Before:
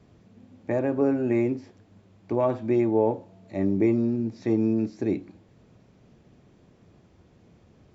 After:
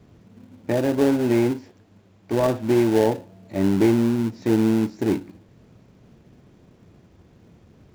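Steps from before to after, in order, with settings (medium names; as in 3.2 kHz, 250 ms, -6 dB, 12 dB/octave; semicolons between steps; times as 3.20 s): 1.51–2.33 s: bass shelf 300 Hz -5 dB; in parallel at -9.5 dB: sample-rate reducer 1.2 kHz, jitter 20%; on the sum: trim +2.5 dB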